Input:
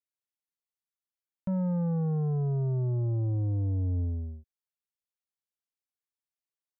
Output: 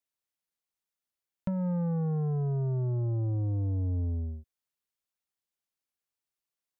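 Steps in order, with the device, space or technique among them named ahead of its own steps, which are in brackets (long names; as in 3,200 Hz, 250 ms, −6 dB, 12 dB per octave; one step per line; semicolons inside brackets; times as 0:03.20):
drum-bus smash (transient designer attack +6 dB, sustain +1 dB; downward compressor, threshold −30 dBFS, peak gain reduction 7 dB; soft clipping −24.5 dBFS, distortion −31 dB)
level +2.5 dB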